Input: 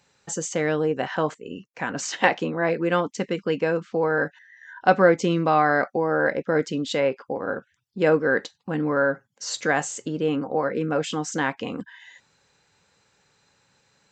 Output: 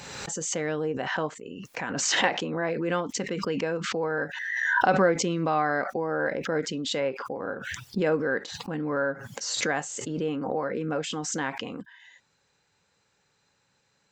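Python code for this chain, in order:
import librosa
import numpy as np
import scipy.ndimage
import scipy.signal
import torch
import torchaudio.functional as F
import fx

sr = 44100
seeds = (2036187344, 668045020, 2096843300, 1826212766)

y = fx.pre_swell(x, sr, db_per_s=33.0)
y = F.gain(torch.from_numpy(y), -6.0).numpy()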